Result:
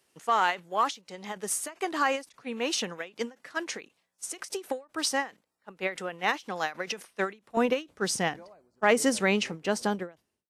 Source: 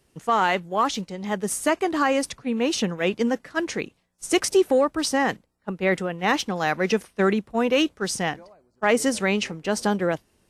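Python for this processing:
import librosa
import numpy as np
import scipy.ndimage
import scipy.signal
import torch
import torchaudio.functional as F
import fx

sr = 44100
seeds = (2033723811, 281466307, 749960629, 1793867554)

y = fx.fade_out_tail(x, sr, length_s=0.87)
y = fx.highpass(y, sr, hz=fx.steps((0.0, 730.0), (7.57, 130.0)), slope=6)
y = fx.end_taper(y, sr, db_per_s=230.0)
y = y * 10.0 ** (-1.5 / 20.0)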